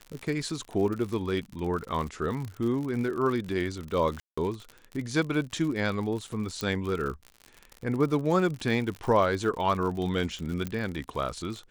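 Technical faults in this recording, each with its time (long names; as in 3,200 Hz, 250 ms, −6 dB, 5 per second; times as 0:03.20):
surface crackle 70 per second −33 dBFS
0:04.20–0:04.38: drop-out 175 ms
0:06.61: click −16 dBFS
0:10.67: click −18 dBFS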